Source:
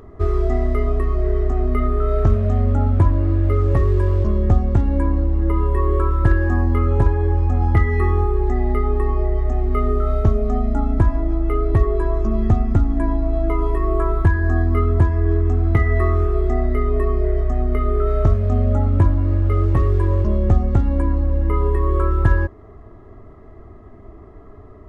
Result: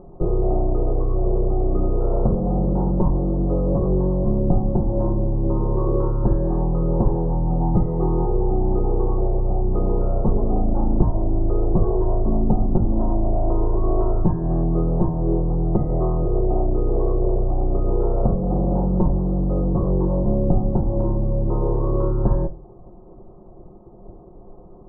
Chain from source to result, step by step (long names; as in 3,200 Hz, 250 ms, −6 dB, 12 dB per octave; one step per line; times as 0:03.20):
lower of the sound and its delayed copy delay 5.6 ms
Butterworth low-pass 940 Hz 36 dB per octave
on a send: convolution reverb RT60 0.30 s, pre-delay 3 ms, DRR 13.5 dB